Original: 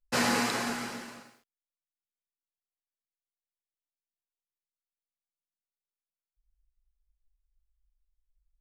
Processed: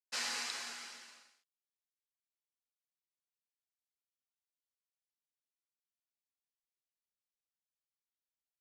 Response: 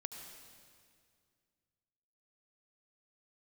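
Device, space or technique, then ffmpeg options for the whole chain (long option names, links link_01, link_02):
piezo pickup straight into a mixer: -af "lowpass=5300,aderivative,volume=1dB"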